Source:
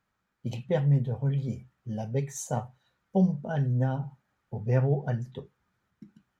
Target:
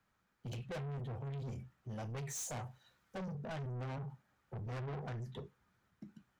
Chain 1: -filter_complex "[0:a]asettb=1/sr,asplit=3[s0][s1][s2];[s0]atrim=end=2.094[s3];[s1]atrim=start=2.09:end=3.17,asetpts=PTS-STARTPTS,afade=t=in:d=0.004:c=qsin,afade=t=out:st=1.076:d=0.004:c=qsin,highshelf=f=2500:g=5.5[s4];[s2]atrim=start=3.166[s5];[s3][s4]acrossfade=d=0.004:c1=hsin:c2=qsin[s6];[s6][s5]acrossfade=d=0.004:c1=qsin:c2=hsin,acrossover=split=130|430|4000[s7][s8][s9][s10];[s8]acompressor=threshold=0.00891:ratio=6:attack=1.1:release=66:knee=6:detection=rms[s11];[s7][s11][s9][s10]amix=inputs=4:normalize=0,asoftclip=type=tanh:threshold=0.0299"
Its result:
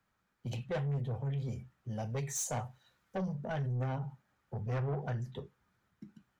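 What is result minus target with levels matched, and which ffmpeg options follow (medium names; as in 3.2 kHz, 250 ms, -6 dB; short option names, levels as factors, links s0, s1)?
saturation: distortion -6 dB
-filter_complex "[0:a]asettb=1/sr,asplit=3[s0][s1][s2];[s0]atrim=end=2.094[s3];[s1]atrim=start=2.09:end=3.17,asetpts=PTS-STARTPTS,afade=t=in:d=0.004:c=qsin,afade=t=out:st=1.076:d=0.004:c=qsin,highshelf=f=2500:g=5.5[s4];[s2]atrim=start=3.166[s5];[s3][s4]acrossfade=d=0.004:c1=hsin:c2=qsin[s6];[s6][s5]acrossfade=d=0.004:c1=qsin:c2=hsin,acrossover=split=130|430|4000[s7][s8][s9][s10];[s8]acompressor=threshold=0.00891:ratio=6:attack=1.1:release=66:knee=6:detection=rms[s11];[s7][s11][s9][s10]amix=inputs=4:normalize=0,asoftclip=type=tanh:threshold=0.01"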